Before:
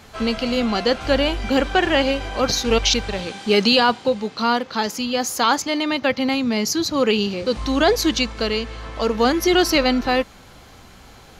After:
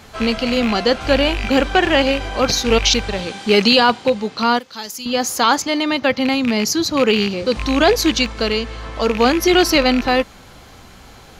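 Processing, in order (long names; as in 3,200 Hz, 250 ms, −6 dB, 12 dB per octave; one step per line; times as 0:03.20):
loose part that buzzes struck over −24 dBFS, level −15 dBFS
0:04.59–0:05.06: first-order pre-emphasis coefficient 0.8
level +3 dB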